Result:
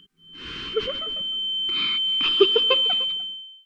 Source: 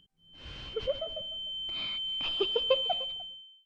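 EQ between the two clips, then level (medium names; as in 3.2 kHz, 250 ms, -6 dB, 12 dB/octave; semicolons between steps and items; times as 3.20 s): FFT filter 120 Hz 0 dB, 170 Hz +10 dB, 410 Hz +15 dB, 630 Hz -10 dB, 1.2 kHz +15 dB, 5.5 kHz +9 dB; 0.0 dB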